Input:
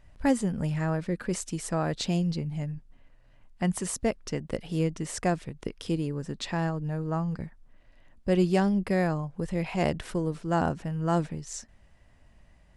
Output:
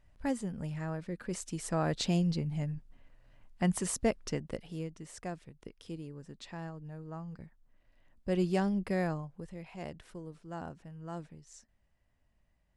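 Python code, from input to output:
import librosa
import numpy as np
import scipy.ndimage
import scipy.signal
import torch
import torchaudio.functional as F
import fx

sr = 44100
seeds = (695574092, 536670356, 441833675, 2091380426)

y = fx.gain(x, sr, db=fx.line((1.12, -9.0), (1.88, -2.0), (4.29, -2.0), (4.89, -13.5), (7.23, -13.5), (8.48, -6.0), (9.11, -6.0), (9.59, -16.0)))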